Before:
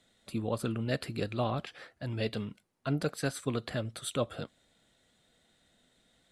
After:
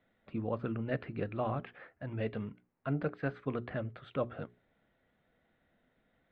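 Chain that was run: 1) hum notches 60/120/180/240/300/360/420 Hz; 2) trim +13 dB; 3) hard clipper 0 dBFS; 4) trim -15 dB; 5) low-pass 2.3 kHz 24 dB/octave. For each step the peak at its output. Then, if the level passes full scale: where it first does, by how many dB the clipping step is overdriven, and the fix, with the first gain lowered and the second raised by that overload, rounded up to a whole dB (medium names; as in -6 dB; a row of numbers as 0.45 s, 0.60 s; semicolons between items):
-15.0 dBFS, -2.0 dBFS, -2.0 dBFS, -17.0 dBFS, -19.0 dBFS; nothing clips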